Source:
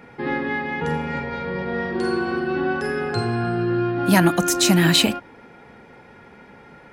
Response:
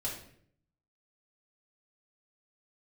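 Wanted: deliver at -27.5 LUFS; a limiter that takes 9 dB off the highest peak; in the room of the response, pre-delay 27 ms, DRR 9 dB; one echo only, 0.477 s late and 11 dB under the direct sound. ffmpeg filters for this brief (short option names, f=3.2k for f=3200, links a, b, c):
-filter_complex "[0:a]alimiter=limit=-12.5dB:level=0:latency=1,aecho=1:1:477:0.282,asplit=2[a][b];[1:a]atrim=start_sample=2205,adelay=27[c];[b][c]afir=irnorm=-1:irlink=0,volume=-11.5dB[d];[a][d]amix=inputs=2:normalize=0,volume=-4.5dB"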